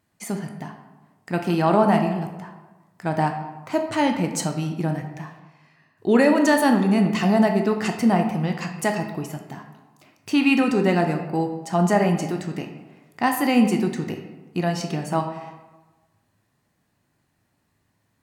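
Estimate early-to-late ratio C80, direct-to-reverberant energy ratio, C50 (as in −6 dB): 9.0 dB, 4.0 dB, 7.0 dB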